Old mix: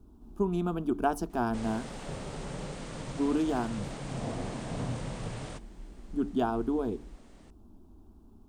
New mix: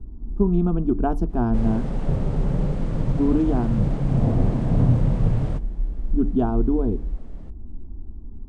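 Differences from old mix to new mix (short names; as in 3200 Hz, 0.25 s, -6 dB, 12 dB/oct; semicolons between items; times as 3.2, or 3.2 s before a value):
background +4.5 dB; master: add tilt -4.5 dB/oct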